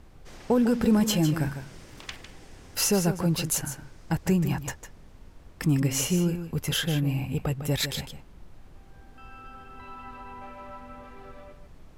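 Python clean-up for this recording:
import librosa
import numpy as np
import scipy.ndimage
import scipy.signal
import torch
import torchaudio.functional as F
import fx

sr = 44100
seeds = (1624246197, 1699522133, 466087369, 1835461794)

y = fx.noise_reduce(x, sr, print_start_s=5.1, print_end_s=5.6, reduce_db=23.0)
y = fx.fix_echo_inverse(y, sr, delay_ms=153, level_db=-10.0)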